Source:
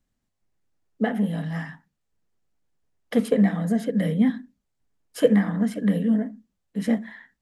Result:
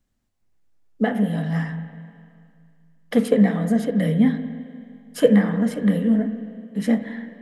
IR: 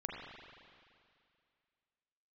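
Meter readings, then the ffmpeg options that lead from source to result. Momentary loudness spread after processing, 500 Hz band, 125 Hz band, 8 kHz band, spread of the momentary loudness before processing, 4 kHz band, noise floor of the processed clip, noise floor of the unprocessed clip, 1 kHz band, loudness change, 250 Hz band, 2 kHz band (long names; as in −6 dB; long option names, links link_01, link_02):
16 LU, +3.0 dB, +3.5 dB, can't be measured, 14 LU, +2.5 dB, −70 dBFS, −78 dBFS, +3.0 dB, +2.5 dB, +3.0 dB, +3.0 dB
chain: -filter_complex "[0:a]asplit=2[link_01][link_02];[1:a]atrim=start_sample=2205,lowshelf=frequency=180:gain=4.5[link_03];[link_02][link_03]afir=irnorm=-1:irlink=0,volume=-6.5dB[link_04];[link_01][link_04]amix=inputs=2:normalize=0"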